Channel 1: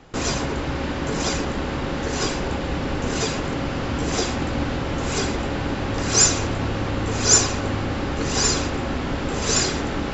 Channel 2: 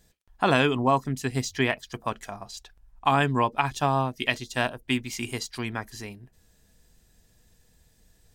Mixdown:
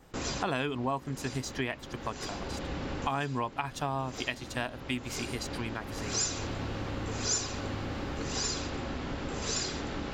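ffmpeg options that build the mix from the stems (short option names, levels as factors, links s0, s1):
-filter_complex "[0:a]adynamicequalizer=threshold=0.02:dfrequency=4200:dqfactor=1.5:tfrequency=4200:tqfactor=1.5:attack=5:release=100:ratio=0.375:range=2:mode=boostabove:tftype=bell,volume=0.335[s0];[1:a]volume=0.631,asplit=2[s1][s2];[s2]apad=whole_len=446881[s3];[s0][s3]sidechaincompress=threshold=0.0224:ratio=8:attack=16:release=840[s4];[s4][s1]amix=inputs=2:normalize=0,acompressor=threshold=0.0251:ratio=2"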